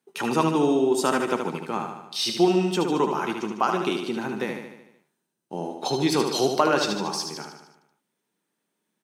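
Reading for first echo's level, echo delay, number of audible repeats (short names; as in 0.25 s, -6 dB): -6.0 dB, 75 ms, 6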